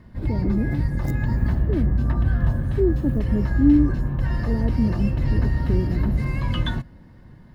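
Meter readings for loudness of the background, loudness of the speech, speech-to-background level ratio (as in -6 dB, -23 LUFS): -24.0 LUFS, -26.0 LUFS, -2.0 dB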